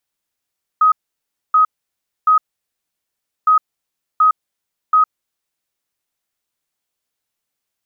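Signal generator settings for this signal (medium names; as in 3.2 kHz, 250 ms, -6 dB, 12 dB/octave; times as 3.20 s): beep pattern sine 1.26 kHz, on 0.11 s, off 0.62 s, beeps 3, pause 1.09 s, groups 2, -8 dBFS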